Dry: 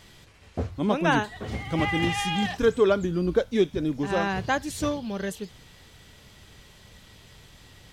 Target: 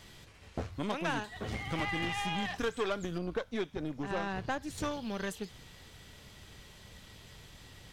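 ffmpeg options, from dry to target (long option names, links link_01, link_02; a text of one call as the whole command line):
ffmpeg -i in.wav -filter_complex "[0:a]aeval=exprs='0.355*(cos(1*acos(clip(val(0)/0.355,-1,1)))-cos(1*PI/2))+0.0224*(cos(8*acos(clip(val(0)/0.355,-1,1)))-cos(8*PI/2))':channel_layout=same,asettb=1/sr,asplit=3[link_01][link_02][link_03];[link_01]atrim=end=3.184[link_04];[link_02]atrim=start=3.18:end=4.78,asetpts=PTS-STARTPTS,afade=type=in:duration=0.004:curve=qsin,afade=type=out:start_time=1.596:duration=0.004:curve=qsin,highshelf=frequency=2200:gain=-10.5[link_05];[link_03]atrim=start=4.776[link_06];[link_04][link_05]acrossfade=duration=0.004:curve1=hsin:curve2=qsin[link_07];[link_07][link_06]acrossfade=duration=0.004:curve1=qsin:curve2=hsin,acrossover=split=880|2500[link_08][link_09][link_10];[link_08]acompressor=threshold=-33dB:ratio=4[link_11];[link_09]acompressor=threshold=-35dB:ratio=4[link_12];[link_10]acompressor=threshold=-42dB:ratio=4[link_13];[link_11][link_12][link_13]amix=inputs=3:normalize=0,volume=-2dB" out.wav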